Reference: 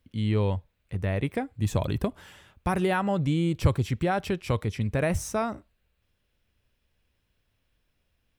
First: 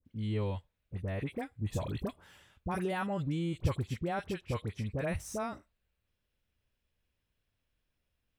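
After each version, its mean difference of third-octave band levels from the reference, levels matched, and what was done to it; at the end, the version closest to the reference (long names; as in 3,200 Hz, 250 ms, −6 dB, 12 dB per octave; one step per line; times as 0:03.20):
4.0 dB: all-pass dispersion highs, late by 56 ms, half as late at 1,200 Hz
level −8.5 dB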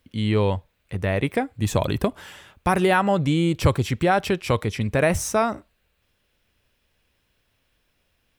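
2.0 dB: low-shelf EQ 210 Hz −7.5 dB
level +8 dB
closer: second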